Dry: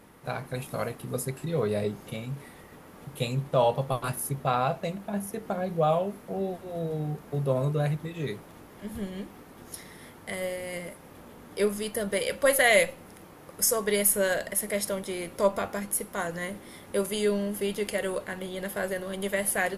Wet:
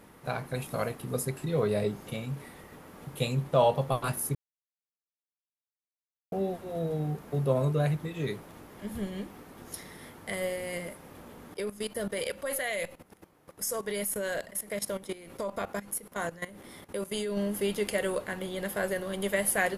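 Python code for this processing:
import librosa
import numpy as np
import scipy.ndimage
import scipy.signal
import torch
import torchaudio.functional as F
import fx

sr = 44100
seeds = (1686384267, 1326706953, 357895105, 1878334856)

y = fx.level_steps(x, sr, step_db=16, at=(11.54, 17.37))
y = fx.edit(y, sr, fx.silence(start_s=4.35, length_s=1.97), tone=tone)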